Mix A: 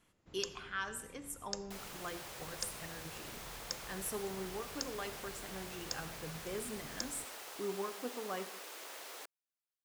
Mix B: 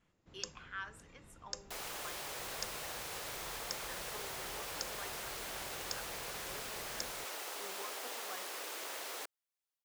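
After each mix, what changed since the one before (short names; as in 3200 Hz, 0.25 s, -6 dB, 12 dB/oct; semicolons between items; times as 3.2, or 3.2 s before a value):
speech: add band-pass 1700 Hz, Q 0.76; second sound +5.0 dB; reverb: off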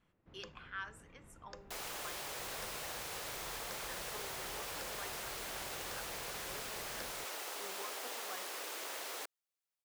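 first sound: add LPF 2300 Hz 12 dB/oct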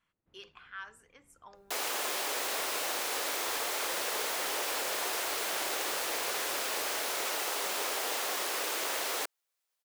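first sound -12.0 dB; second sound +10.0 dB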